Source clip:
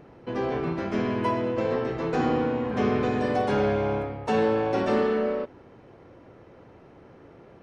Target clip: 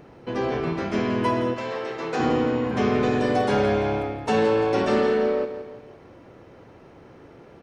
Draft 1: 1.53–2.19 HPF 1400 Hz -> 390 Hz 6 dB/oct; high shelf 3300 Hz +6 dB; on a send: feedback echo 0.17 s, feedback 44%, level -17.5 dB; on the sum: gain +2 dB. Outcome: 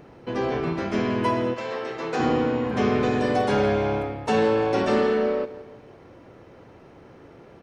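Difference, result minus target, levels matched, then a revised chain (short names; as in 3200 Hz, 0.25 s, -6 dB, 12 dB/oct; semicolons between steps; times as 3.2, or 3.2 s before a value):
echo-to-direct -6 dB
1.53–2.19 HPF 1400 Hz -> 390 Hz 6 dB/oct; high shelf 3300 Hz +6 dB; on a send: feedback echo 0.17 s, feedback 44%, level -11.5 dB; on the sum: gain +2 dB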